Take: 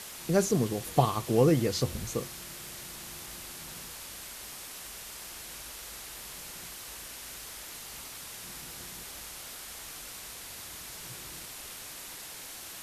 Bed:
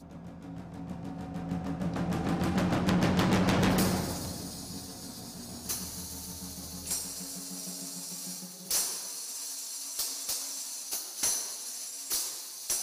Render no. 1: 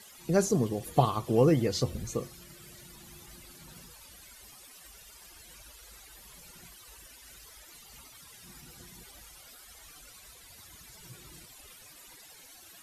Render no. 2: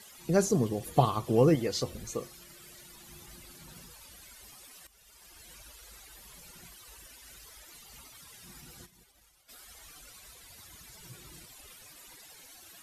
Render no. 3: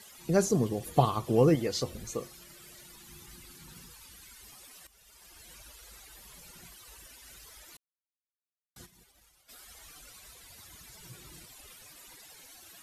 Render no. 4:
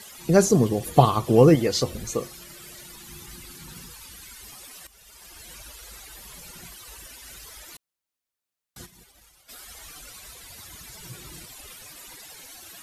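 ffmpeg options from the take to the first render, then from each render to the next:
ffmpeg -i in.wav -af "afftdn=noise_reduction=15:noise_floor=-44" out.wav
ffmpeg -i in.wav -filter_complex "[0:a]asettb=1/sr,asplit=3[link_01][link_02][link_03];[link_01]atrim=end=1.554[link_04];[link_02]atrim=start=1.55:end=3.09,asetpts=PTS-STARTPTS,afade=type=in:duration=0.004:curve=qsin,afade=type=out:start_time=1.536:duration=0.004:curve=qsin,equalizer=frequency=100:width=0.44:gain=-8[link_05];[link_03]atrim=start=3.086[link_06];[link_04][link_05]acrossfade=duration=0.004:curve1=hsin:curve2=qsin[link_07];[link_07][link_06]acrossfade=duration=0.004:curve1=qsin:curve2=hsin,asplit=3[link_08][link_09][link_10];[link_08]afade=type=out:start_time=8.85:duration=0.02[link_11];[link_09]agate=range=-33dB:threshold=-43dB:ratio=3:release=100:detection=peak,afade=type=in:start_time=8.85:duration=0.02,afade=type=out:start_time=9.48:duration=0.02[link_12];[link_10]afade=type=in:start_time=9.48:duration=0.02[link_13];[link_11][link_12][link_13]amix=inputs=3:normalize=0,asplit=2[link_14][link_15];[link_14]atrim=end=4.87,asetpts=PTS-STARTPTS,afade=type=out:start_time=4.866:duration=0.004:curve=hsin:silence=0.199526[link_16];[link_15]atrim=start=4.87,asetpts=PTS-STARTPTS,afade=type=in:duration=0.6:silence=0.199526[link_17];[link_16][link_17]concat=n=2:v=0:a=1" out.wav
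ffmpeg -i in.wav -filter_complex "[0:a]asettb=1/sr,asplit=3[link_01][link_02][link_03];[link_01]atrim=end=2.964[link_04];[link_02]atrim=start=2.96:end=4.47,asetpts=PTS-STARTPTS,afade=type=in:duration=0.004:curve=qsin,afade=type=out:start_time=1.506:duration=0.004:curve=qsin,equalizer=frequency=620:width=3.5:gain=-12[link_05];[link_03]atrim=start=4.466[link_06];[link_04][link_05]acrossfade=duration=0.004:curve1=hsin:curve2=qsin[link_07];[link_07][link_06]acrossfade=duration=0.004:curve1=qsin:curve2=hsin,asplit=3[link_08][link_09][link_10];[link_08]atrim=end=7.77,asetpts=PTS-STARTPTS,afade=type=out:start_time=7.766:duration=0.004:curve=hsin[link_11];[link_09]atrim=start=7.77:end=8.76,asetpts=PTS-STARTPTS,volume=0[link_12];[link_10]atrim=start=8.76,asetpts=PTS-STARTPTS,afade=type=in:duration=0.004:curve=hsin[link_13];[link_11][link_12][link_13]concat=n=3:v=0:a=1" out.wav
ffmpeg -i in.wav -af "volume=8dB" out.wav

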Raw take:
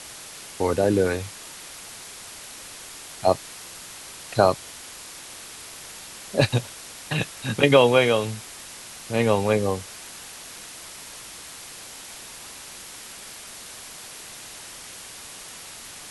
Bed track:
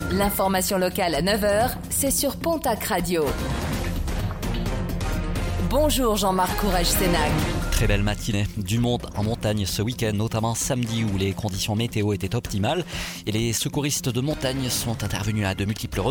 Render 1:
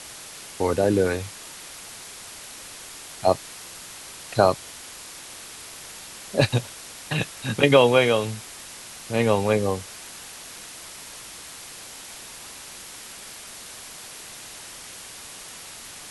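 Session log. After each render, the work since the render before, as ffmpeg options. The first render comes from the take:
ffmpeg -i in.wav -af anull out.wav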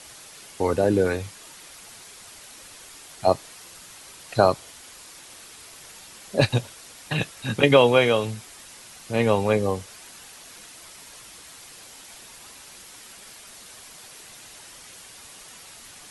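ffmpeg -i in.wav -af "afftdn=noise_reduction=6:noise_floor=-41" out.wav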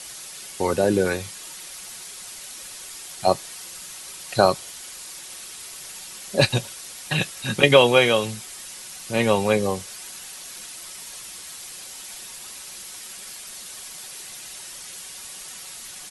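ffmpeg -i in.wav -af "highshelf=frequency=2700:gain=8,aecho=1:1:5.4:0.3" out.wav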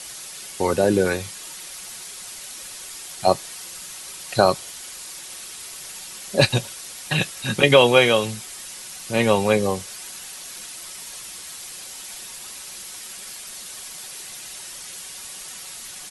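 ffmpeg -i in.wav -af "volume=1.5dB,alimiter=limit=-2dB:level=0:latency=1" out.wav

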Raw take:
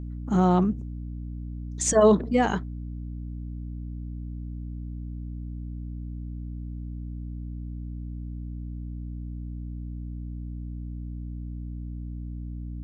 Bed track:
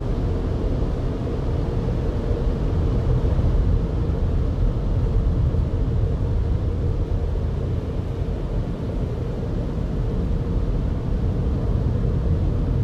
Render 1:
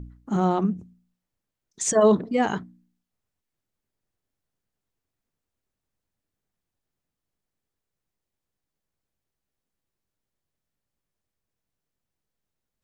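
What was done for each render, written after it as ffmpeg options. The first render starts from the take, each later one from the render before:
ffmpeg -i in.wav -af "bandreject=frequency=60:width_type=h:width=4,bandreject=frequency=120:width_type=h:width=4,bandreject=frequency=180:width_type=h:width=4,bandreject=frequency=240:width_type=h:width=4,bandreject=frequency=300:width_type=h:width=4" out.wav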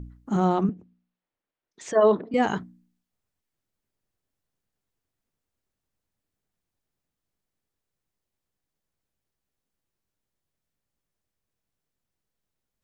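ffmpeg -i in.wav -filter_complex "[0:a]asettb=1/sr,asplit=3[link_01][link_02][link_03];[link_01]atrim=end=0.694[link_04];[link_02]atrim=start=0.69:end=2.34,asetpts=PTS-STARTPTS,afade=type=in:duration=0.004:curve=qsin,afade=type=out:start_time=1.646:duration=0.004:curve=qsin,acrossover=split=270 3800:gain=0.224 1 0.0794[link_05][link_06][link_07];[link_05][link_06][link_07]amix=inputs=3:normalize=0[link_08];[link_03]atrim=start=2.336[link_09];[link_04][link_08]acrossfade=duration=0.004:curve1=hsin:curve2=qsin[link_10];[link_10][link_09]acrossfade=duration=0.004:curve1=qsin:curve2=hsin" out.wav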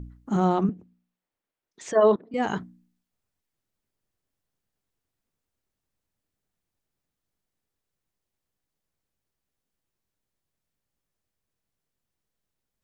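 ffmpeg -i in.wav -filter_complex "[0:a]asplit=2[link_01][link_02];[link_01]atrim=end=2.16,asetpts=PTS-STARTPTS,afade=type=out:start_time=2.156:duration=0.004:curve=hsin:silence=0.112202[link_03];[link_02]atrim=start=2.16,asetpts=PTS-STARTPTS,afade=type=in:duration=0.42:silence=0.112202[link_04];[link_03][link_04]concat=n=2:v=0:a=1" out.wav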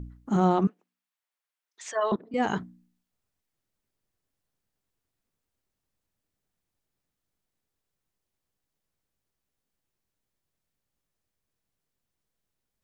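ffmpeg -i in.wav -filter_complex "[0:a]asettb=1/sr,asplit=3[link_01][link_02][link_03];[link_01]atrim=end=0.674[link_04];[link_02]atrim=start=0.67:end=2.12,asetpts=PTS-STARTPTS,afade=type=in:duration=0.004:curve=qsin,afade=type=out:start_time=1.446:duration=0.004:curve=qsin,highpass=1000[link_05];[link_03]atrim=start=2.116[link_06];[link_04][link_05]acrossfade=duration=0.004:curve1=hsin:curve2=qsin[link_07];[link_07][link_06]acrossfade=duration=0.004:curve1=qsin:curve2=hsin" out.wav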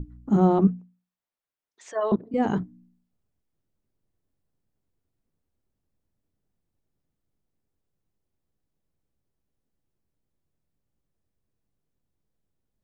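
ffmpeg -i in.wav -af "tiltshelf=frequency=740:gain=7.5,bandreject=frequency=60:width_type=h:width=6,bandreject=frequency=120:width_type=h:width=6,bandreject=frequency=180:width_type=h:width=6,bandreject=frequency=240:width_type=h:width=6" out.wav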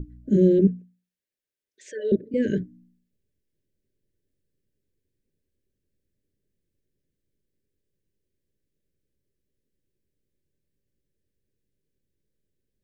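ffmpeg -i in.wav -af "afftfilt=real='re*(1-between(b*sr/4096,620,1500))':imag='im*(1-between(b*sr/4096,620,1500))':win_size=4096:overlap=0.75,equalizer=frequency=390:width=3.4:gain=6" out.wav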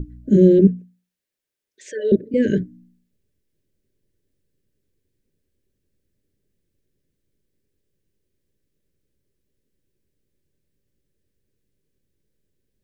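ffmpeg -i in.wav -af "volume=5.5dB" out.wav

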